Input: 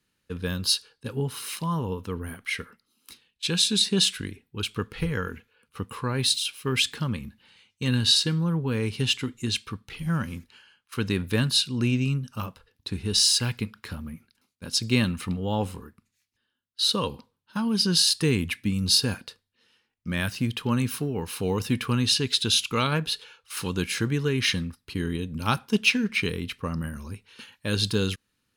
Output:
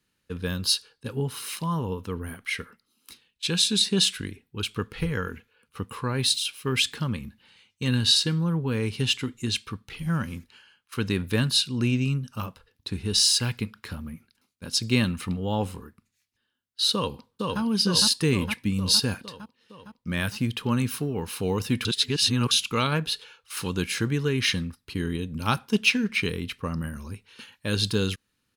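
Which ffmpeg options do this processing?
ffmpeg -i in.wav -filter_complex "[0:a]asplit=2[link_01][link_02];[link_02]afade=type=in:start_time=16.93:duration=0.01,afade=type=out:start_time=17.61:duration=0.01,aecho=0:1:460|920|1380|1840|2300|2760|3220|3680|4140|4600|5060:0.794328|0.516313|0.335604|0.218142|0.141793|0.0921652|0.0599074|0.0389398|0.0253109|0.0164521|0.0106938[link_03];[link_01][link_03]amix=inputs=2:normalize=0,asplit=3[link_04][link_05][link_06];[link_04]atrim=end=21.852[link_07];[link_05]atrim=start=21.848:end=22.512,asetpts=PTS-STARTPTS,areverse[link_08];[link_06]atrim=start=22.508[link_09];[link_07][link_08]acrossfade=duration=0.004:curve1=hsin:curve2=hsin[link_10];[link_10][link_09]acrossfade=duration=0.004:curve1=hsin:curve2=hsin" out.wav

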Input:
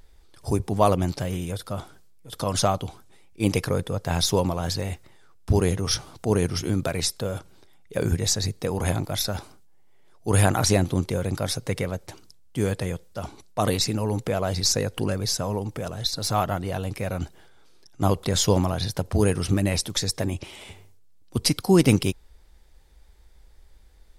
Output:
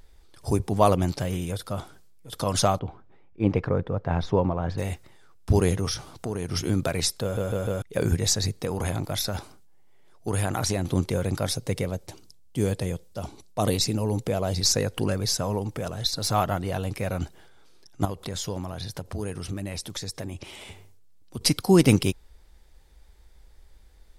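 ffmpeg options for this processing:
ffmpeg -i in.wav -filter_complex "[0:a]asettb=1/sr,asplit=3[link_01][link_02][link_03];[link_01]atrim=end=2.794[link_04];[link_02]atrim=start=2.79:end=4.78,asetpts=PTS-STARTPTS,afade=type=in:duration=0.004:curve=qsin,afade=type=out:start_time=1.986:duration=0.004:curve=qsin,lowpass=1600[link_05];[link_03]atrim=start=4.776[link_06];[link_04][link_05]acrossfade=duration=0.004:curve1=hsin:curve2=qsin[link_07];[link_07][link_06]acrossfade=duration=0.004:curve1=qsin:curve2=hsin,asettb=1/sr,asplit=3[link_08][link_09][link_10];[link_08]atrim=end=5.874[link_11];[link_09]atrim=start=5.87:end=6.52,asetpts=PTS-STARTPTS,afade=type=in:duration=0.004:curve=qsin,afade=type=out:start_time=0.646:duration=0.004:curve=qsin,acompressor=threshold=-25dB:ratio=6:attack=3.2:release=140:knee=1:detection=peak[link_12];[link_10]atrim=start=6.516[link_13];[link_11][link_12]acrossfade=duration=0.004:curve1=hsin:curve2=qsin[link_14];[link_14][link_13]acrossfade=duration=0.004:curve1=qsin:curve2=hsin,asettb=1/sr,asplit=3[link_15][link_16][link_17];[link_15]atrim=end=8.624[link_18];[link_16]atrim=start=8.62:end=10.85,asetpts=PTS-STARTPTS,afade=type=in:duration=0.004:curve=qsin,afade=type=out:start_time=2.226:duration=0.004:curve=qsin,acompressor=threshold=-23dB:ratio=3:attack=3.2:release=140:knee=1:detection=peak[link_19];[link_17]atrim=start=10.846[link_20];[link_18][link_19]acrossfade=duration=0.004:curve1=hsin:curve2=qsin[link_21];[link_21][link_20]acrossfade=duration=0.004:curve1=qsin:curve2=hsin,asettb=1/sr,asplit=3[link_22][link_23][link_24];[link_22]atrim=end=11.494[link_25];[link_23]atrim=start=11.49:end=14.61,asetpts=PTS-STARTPTS,afade=type=in:duration=0.004:curve=qsin,afade=type=out:start_time=3.116:duration=0.004:curve=qsin,equalizer=frequency=1500:width_type=o:width=1.5:gain=-6[link_26];[link_24]atrim=start=14.606[link_27];[link_25][link_26]acrossfade=duration=0.004:curve1=hsin:curve2=qsin[link_28];[link_28][link_27]acrossfade=duration=0.004:curve1=qsin:curve2=hsin,asettb=1/sr,asplit=3[link_29][link_30][link_31];[link_29]atrim=end=18.054[link_32];[link_30]atrim=start=18.05:end=21.41,asetpts=PTS-STARTPTS,afade=type=in:duration=0.004:curve=qsin,afade=type=out:start_time=3.356:duration=0.004:curve=qsin,acompressor=threshold=-36dB:ratio=2:attack=3.2:release=140:knee=1:detection=peak[link_33];[link_31]atrim=start=21.406[link_34];[link_32][link_33]acrossfade=duration=0.004:curve1=hsin:curve2=qsin[link_35];[link_35][link_34]acrossfade=duration=0.004:curve1=qsin:curve2=hsin,asplit=5[link_36][link_37][link_38][link_39][link_40];[link_36]atrim=end=7.372[link_41];[link_37]atrim=start=7.218:end=7.372[link_42];[link_38]atrim=start=7.218:end=7.372[link_43];[link_39]atrim=start=7.218:end=7.372[link_44];[link_40]atrim=start=7.818[link_45];[link_41][link_42]acrossfade=duration=0.004:curve1=hsin:curve2=hsin[link_46];[link_46][link_43]acrossfade=duration=0.004:curve1=hsin:curve2=hsin[link_47];[link_47][link_44]acrossfade=duration=0.004:curve1=hsin:curve2=hsin[link_48];[link_48][link_45]acrossfade=duration=0.004:curve1=hsin:curve2=hsin" out.wav

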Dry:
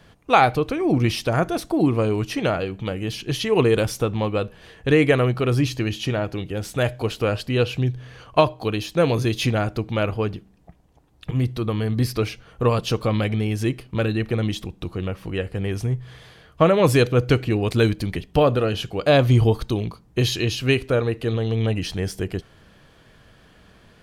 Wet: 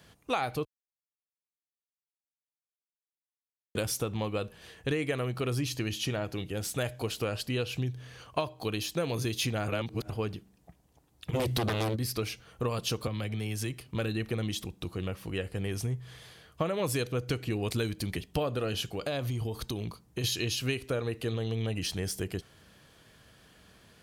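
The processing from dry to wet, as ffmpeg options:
ffmpeg -i in.wav -filter_complex "[0:a]asplit=3[link_01][link_02][link_03];[link_01]afade=type=out:start_time=11.33:duration=0.02[link_04];[link_02]aeval=exprs='0.282*sin(PI/2*3.98*val(0)/0.282)':channel_layout=same,afade=type=in:start_time=11.33:duration=0.02,afade=type=out:start_time=11.95:duration=0.02[link_05];[link_03]afade=type=in:start_time=11.95:duration=0.02[link_06];[link_04][link_05][link_06]amix=inputs=3:normalize=0,asettb=1/sr,asplit=3[link_07][link_08][link_09];[link_07]atrim=end=13.074[link_10];[link_08]atrim=start=13.07:end=13.88,asetpts=PTS-STARTPTS,afade=type=in:duration=0.004:curve=qsin,afade=type=out:start_time=0.806:duration=0.004:curve=qsin,acrossover=split=160|510[link_11][link_12][link_13];[link_11]acompressor=threshold=-27dB:ratio=4[link_14];[link_12]acompressor=threshold=-33dB:ratio=4[link_15];[link_13]acompressor=threshold=-33dB:ratio=4[link_16];[link_14][link_15][link_16]amix=inputs=3:normalize=0[link_17];[link_09]atrim=start=13.876[link_18];[link_10][link_17]acrossfade=duration=0.004:curve1=hsin:curve2=qsin[link_19];[link_19][link_18]acrossfade=duration=0.004:curve1=qsin:curve2=hsin,asettb=1/sr,asplit=3[link_20][link_21][link_22];[link_20]atrim=end=18.774[link_23];[link_21]atrim=start=18.77:end=20.24,asetpts=PTS-STARTPTS,afade=type=in:duration=0.004:curve=qsin,afade=type=out:start_time=1.466:duration=0.004:curve=qsin,acompressor=threshold=-22dB:ratio=6:attack=3.2:release=140:knee=1:detection=peak[link_24];[link_22]atrim=start=20.236[link_25];[link_23][link_24]acrossfade=duration=0.004:curve1=hsin:curve2=qsin[link_26];[link_26][link_25]acrossfade=duration=0.004:curve1=qsin:curve2=hsin,asplit=5[link_27][link_28][link_29][link_30][link_31];[link_27]atrim=end=0.65,asetpts=PTS-STARTPTS,afade=type=out:start_time=0.646:duration=0.004:curve=hsin[link_32];[link_28]atrim=start=0.65:end=3.75,asetpts=PTS-STARTPTS,volume=0[link_33];[link_29]atrim=start=3.75:end=9.682,asetpts=PTS-STARTPTS,afade=type=in:duration=0.004:curve=hsin[link_34];[link_30]atrim=start=9.678:end=10.102,asetpts=PTS-STARTPTS,areverse[link_35];[link_31]atrim=start=10.098[link_36];[link_32][link_33][link_34]concat=n=3:v=0:a=1[link_37];[link_37][link_35]acrossfade=duration=0.004:curve1=hsin:curve2=hsin[link_38];[link_38][link_36]acrossfade=duration=0.004:curve1=hsin:curve2=hsin,highpass=47,highshelf=frequency=4600:gain=11.5,acompressor=threshold=-20dB:ratio=6,volume=-7dB" out.wav

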